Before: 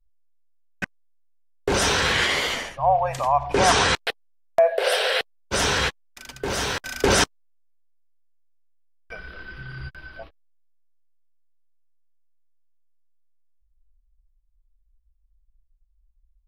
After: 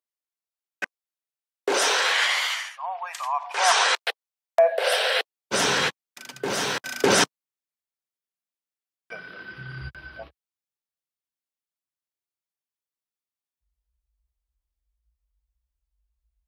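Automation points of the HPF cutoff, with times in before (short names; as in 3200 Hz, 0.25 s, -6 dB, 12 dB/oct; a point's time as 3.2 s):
HPF 24 dB/oct
1.69 s 320 Hz
2.65 s 1100 Hz
3.26 s 1100 Hz
3.97 s 490 Hz
5.13 s 490 Hz
5.55 s 140 Hz
9.35 s 140 Hz
9.89 s 59 Hz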